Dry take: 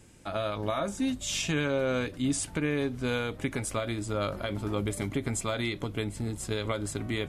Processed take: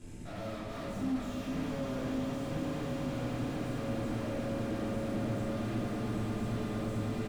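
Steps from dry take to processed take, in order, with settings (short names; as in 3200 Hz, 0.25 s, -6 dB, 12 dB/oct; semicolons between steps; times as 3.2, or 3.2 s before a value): regenerating reverse delay 0.251 s, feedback 83%, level -12 dB; low shelf 380 Hz +9 dB; notches 50/100/150/200/250/300 Hz; tube stage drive 43 dB, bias 0.75; limiter -49.5 dBFS, peak gain reduction 10.5 dB; bell 220 Hz +8 dB 0.75 oct; doubler 49 ms -12 dB; swelling echo 0.111 s, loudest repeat 8, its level -10 dB; shoebox room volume 190 m³, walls mixed, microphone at 3.1 m; slew limiter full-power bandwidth 13 Hz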